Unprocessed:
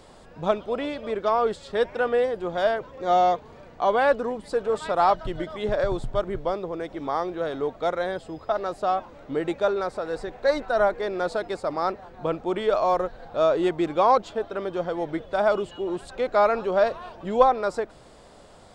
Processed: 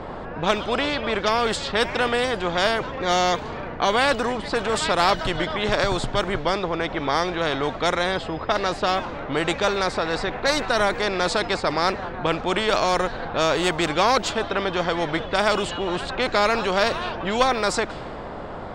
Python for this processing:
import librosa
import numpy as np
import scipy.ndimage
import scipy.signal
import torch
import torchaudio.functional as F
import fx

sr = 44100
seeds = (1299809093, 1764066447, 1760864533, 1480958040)

y = fx.env_lowpass(x, sr, base_hz=1600.0, full_db=-19.5)
y = fx.spectral_comp(y, sr, ratio=2.0)